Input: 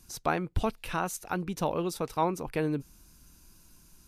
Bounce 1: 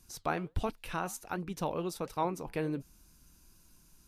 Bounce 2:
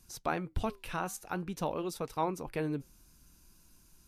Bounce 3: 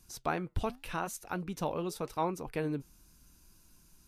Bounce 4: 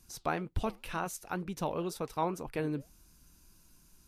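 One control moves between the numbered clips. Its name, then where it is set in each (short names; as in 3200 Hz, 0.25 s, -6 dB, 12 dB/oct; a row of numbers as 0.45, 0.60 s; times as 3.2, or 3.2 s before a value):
flange, rate: 1.4, 0.49, 0.86, 2 Hz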